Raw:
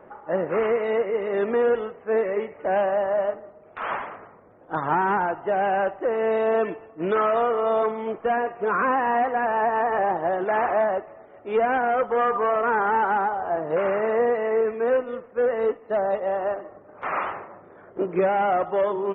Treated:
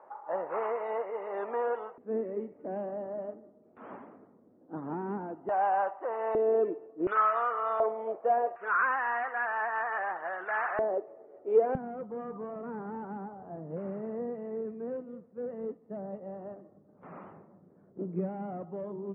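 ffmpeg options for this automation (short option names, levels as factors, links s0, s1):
-af "asetnsamples=n=441:p=0,asendcmd='1.98 bandpass f 250;5.49 bandpass f 940;6.35 bandpass f 380;7.07 bandpass f 1300;7.8 bandpass f 620;8.56 bandpass f 1500;10.79 bandpass f 430;11.75 bandpass f 180',bandpass=f=900:t=q:w=2.6:csg=0"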